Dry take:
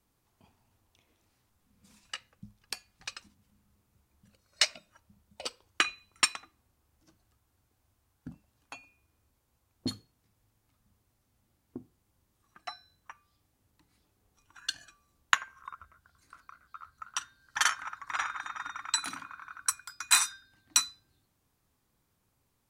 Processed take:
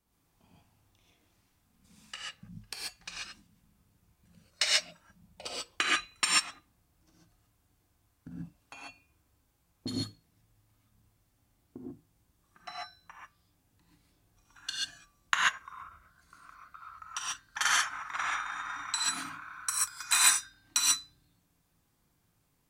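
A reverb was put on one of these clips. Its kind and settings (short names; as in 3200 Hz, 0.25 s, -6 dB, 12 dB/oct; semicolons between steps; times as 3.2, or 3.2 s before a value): non-linear reverb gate 0.16 s rising, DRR -5 dB; gain -4.5 dB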